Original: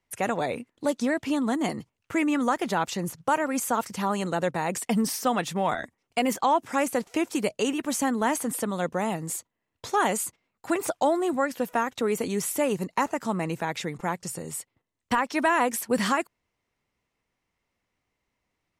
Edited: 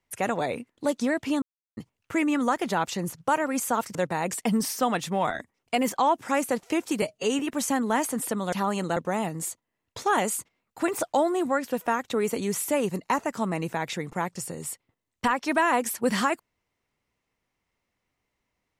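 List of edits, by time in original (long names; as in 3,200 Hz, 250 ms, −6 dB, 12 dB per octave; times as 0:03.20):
0:01.42–0:01.77: silence
0:03.95–0:04.39: move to 0:08.84
0:07.46–0:07.71: time-stretch 1.5×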